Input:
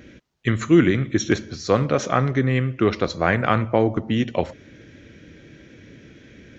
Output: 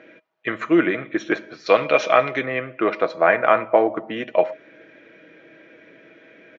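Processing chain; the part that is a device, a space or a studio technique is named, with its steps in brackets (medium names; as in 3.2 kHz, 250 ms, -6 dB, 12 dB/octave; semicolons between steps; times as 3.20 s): comb 6.2 ms, depth 31%; 1.66–2.46 s: high-order bell 3.8 kHz +11.5 dB; tin-can telephone (band-pass 490–2000 Hz; small resonant body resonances 630/2400 Hz, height 11 dB, ringing for 90 ms); trim +4 dB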